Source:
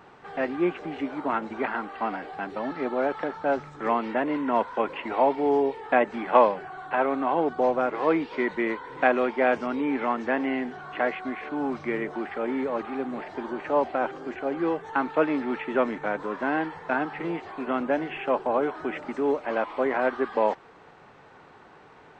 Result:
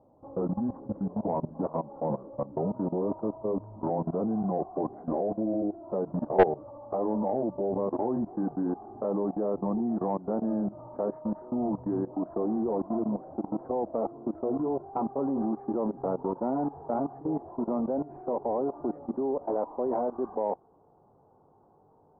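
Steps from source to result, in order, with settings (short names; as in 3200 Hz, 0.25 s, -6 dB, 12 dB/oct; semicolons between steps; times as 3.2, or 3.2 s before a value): gliding pitch shift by -6.5 st ending unshifted; steep low-pass 940 Hz 36 dB/oct; bell 93 Hz +4 dB 0.63 oct; level quantiser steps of 17 dB; soft clip -16.5 dBFS, distortion -16 dB; gain +6 dB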